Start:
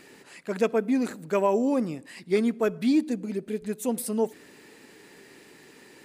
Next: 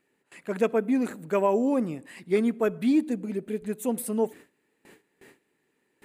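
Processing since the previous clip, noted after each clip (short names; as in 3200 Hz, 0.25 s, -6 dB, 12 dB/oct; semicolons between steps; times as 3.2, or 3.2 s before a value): bell 5100 Hz -9.5 dB 0.78 oct; gate with hold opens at -40 dBFS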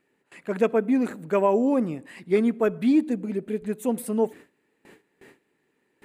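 high shelf 4700 Hz -6.5 dB; gain +2.5 dB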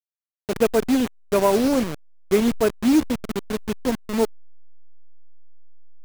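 level-crossing sampler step -24.5 dBFS; gain +3 dB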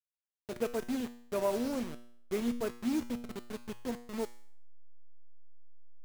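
resonator 120 Hz, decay 0.62 s, harmonics all, mix 70%; gain -6 dB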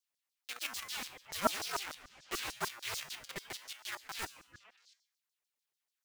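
delay with a stepping band-pass 0.171 s, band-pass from 260 Hz, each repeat 1.4 oct, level -10.5 dB; LFO high-pass saw down 6.8 Hz 940–5700 Hz; ring modulator with a swept carrier 460 Hz, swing 75%, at 0.89 Hz; gain +8 dB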